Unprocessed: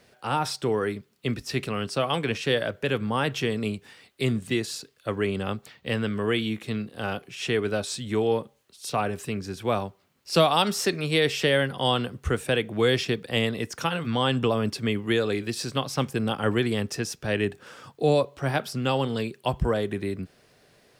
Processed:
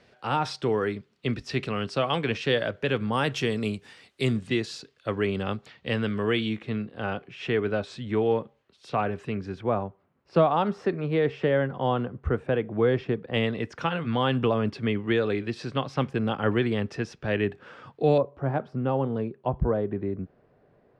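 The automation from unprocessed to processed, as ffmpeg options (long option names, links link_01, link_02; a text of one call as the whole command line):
ffmpeg -i in.wav -af "asetnsamples=nb_out_samples=441:pad=0,asendcmd='3.13 lowpass f 8500;4.37 lowpass f 4700;6.6 lowpass f 2500;9.61 lowpass f 1300;13.34 lowpass f 2700;18.18 lowpass f 1000',lowpass=4500" out.wav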